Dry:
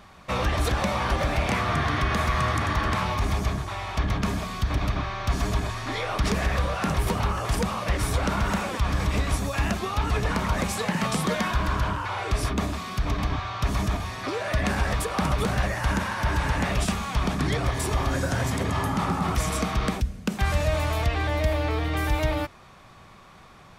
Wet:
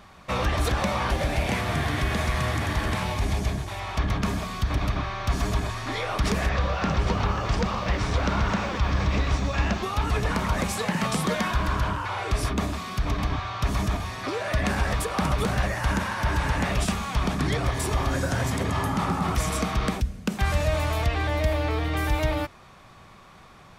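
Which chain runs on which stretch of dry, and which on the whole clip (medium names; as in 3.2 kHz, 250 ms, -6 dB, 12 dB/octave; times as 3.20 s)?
1.10–3.80 s: CVSD coder 64 kbps + peaking EQ 1.2 kHz -7.5 dB 0.52 oct
6.49–9.83 s: low-pass 6.1 kHz 24 dB/octave + bit-crushed delay 119 ms, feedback 80%, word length 9-bit, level -13 dB
whole clip: none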